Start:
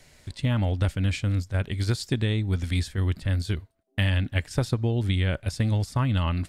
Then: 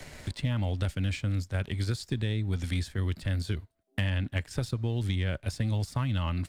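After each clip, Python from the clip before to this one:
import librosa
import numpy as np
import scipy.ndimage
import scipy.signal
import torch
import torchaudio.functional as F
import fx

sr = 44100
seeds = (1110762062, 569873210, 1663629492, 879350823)

y = fx.leveller(x, sr, passes=1)
y = fx.band_squash(y, sr, depth_pct=70)
y = y * 10.0 ** (-8.5 / 20.0)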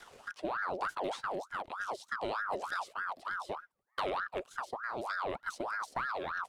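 y = fx.rotary_switch(x, sr, hz=0.7, then_hz=7.5, switch_at_s=4.81)
y = fx.ring_lfo(y, sr, carrier_hz=1000.0, swing_pct=55, hz=3.3)
y = y * 10.0 ** (-3.5 / 20.0)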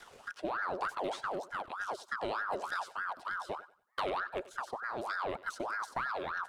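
y = fx.echo_thinned(x, sr, ms=94, feedback_pct=28, hz=210.0, wet_db=-18.0)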